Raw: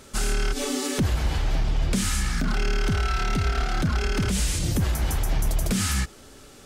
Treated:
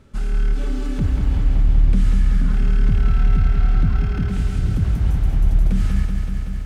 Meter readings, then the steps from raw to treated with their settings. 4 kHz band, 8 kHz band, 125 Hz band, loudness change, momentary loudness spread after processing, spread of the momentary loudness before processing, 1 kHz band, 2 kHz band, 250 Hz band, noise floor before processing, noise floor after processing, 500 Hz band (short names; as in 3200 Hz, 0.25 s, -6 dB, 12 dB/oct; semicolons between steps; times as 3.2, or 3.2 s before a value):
-11.5 dB, under -15 dB, +6.5 dB, +5.0 dB, 5 LU, 2 LU, -6.0 dB, -6.5 dB, +2.5 dB, -48 dBFS, -24 dBFS, -4.5 dB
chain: tone controls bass +12 dB, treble -13 dB; lo-fi delay 0.189 s, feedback 80%, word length 9-bit, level -6 dB; gain -8 dB